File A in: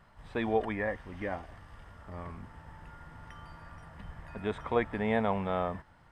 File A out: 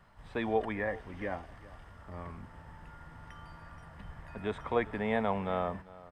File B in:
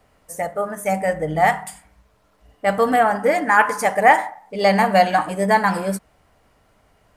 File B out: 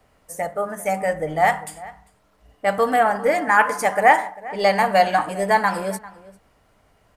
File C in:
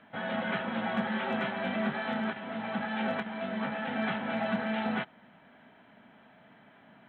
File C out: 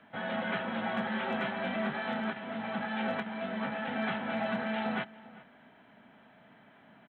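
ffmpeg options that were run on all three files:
-filter_complex "[0:a]acrossover=split=300[s0][s1];[s0]asoftclip=type=tanh:threshold=0.0282[s2];[s2][s1]amix=inputs=2:normalize=0,asplit=2[s3][s4];[s4]adelay=396.5,volume=0.112,highshelf=f=4000:g=-8.92[s5];[s3][s5]amix=inputs=2:normalize=0,volume=0.891"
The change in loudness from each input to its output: -1.5 LU, -1.5 LU, -1.5 LU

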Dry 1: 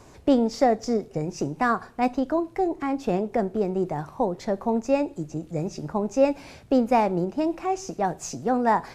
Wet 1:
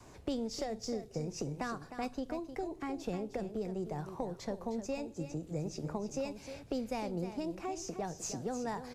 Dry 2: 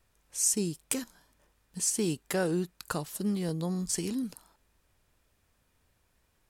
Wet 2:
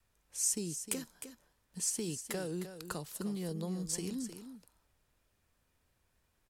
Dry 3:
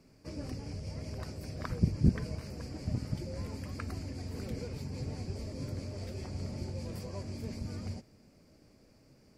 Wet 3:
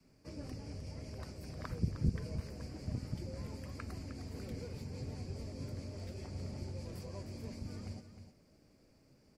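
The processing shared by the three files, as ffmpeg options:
-filter_complex "[0:a]adynamicequalizer=threshold=0.01:dfrequency=470:dqfactor=2.7:tfrequency=470:tqfactor=2.7:attack=5:release=100:ratio=0.375:range=2.5:mode=boostabove:tftype=bell,acrossover=split=150|3000[s0][s1][s2];[s1]acompressor=threshold=0.0251:ratio=6[s3];[s0][s3][s2]amix=inputs=3:normalize=0,aecho=1:1:308:0.299,volume=0.562"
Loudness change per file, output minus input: -13.5 LU, -6.0 LU, -5.5 LU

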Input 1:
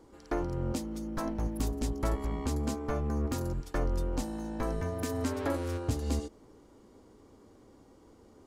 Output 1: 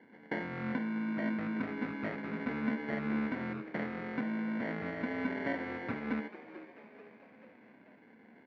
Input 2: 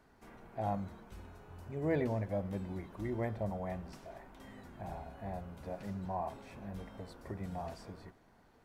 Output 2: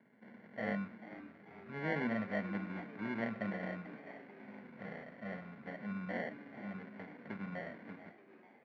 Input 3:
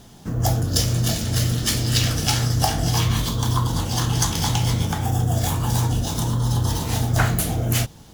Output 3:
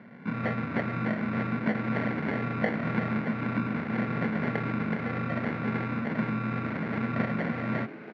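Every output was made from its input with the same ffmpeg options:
-filter_complex "[0:a]acompressor=threshold=0.0355:ratio=1.5,acrusher=samples=35:mix=1:aa=0.000001,highpass=f=150:w=0.5412,highpass=f=150:w=1.3066,equalizer=f=220:t=q:w=4:g=9,equalizer=f=350:t=q:w=4:g=-6,equalizer=f=850:t=q:w=4:g=-4,equalizer=f=1400:t=q:w=4:g=7,equalizer=f=2100:t=q:w=4:g=8,equalizer=f=3100:t=q:w=4:g=-9,lowpass=f=3100:w=0.5412,lowpass=f=3100:w=1.3066,asplit=6[s0][s1][s2][s3][s4][s5];[s1]adelay=439,afreqshift=97,volume=0.178[s6];[s2]adelay=878,afreqshift=194,volume=0.0912[s7];[s3]adelay=1317,afreqshift=291,volume=0.0462[s8];[s4]adelay=1756,afreqshift=388,volume=0.0237[s9];[s5]adelay=2195,afreqshift=485,volume=0.012[s10];[s0][s6][s7][s8][s9][s10]amix=inputs=6:normalize=0,volume=0.75"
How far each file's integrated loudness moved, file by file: -2.5 LU, -2.0 LU, -9.0 LU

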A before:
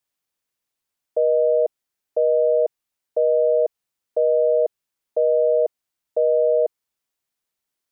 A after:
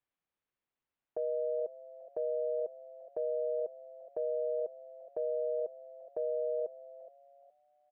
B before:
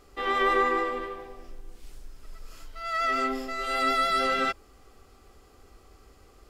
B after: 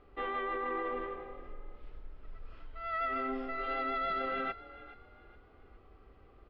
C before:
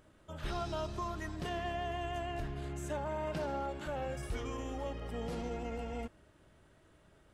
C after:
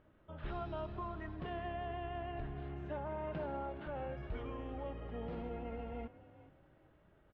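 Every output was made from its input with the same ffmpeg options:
-filter_complex "[0:a]lowpass=f=3500:w=0.5412,lowpass=f=3500:w=1.3066,aemphasis=mode=reproduction:type=75kf,acompressor=threshold=0.0562:ratio=5,alimiter=limit=0.0631:level=0:latency=1:release=18,asplit=2[s0][s1];[s1]asplit=3[s2][s3][s4];[s2]adelay=419,afreqshift=39,volume=0.141[s5];[s3]adelay=838,afreqshift=78,volume=0.0437[s6];[s4]adelay=1257,afreqshift=117,volume=0.0136[s7];[s5][s6][s7]amix=inputs=3:normalize=0[s8];[s0][s8]amix=inputs=2:normalize=0,volume=0.668"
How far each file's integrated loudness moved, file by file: -16.0 LU, -9.5 LU, -4.0 LU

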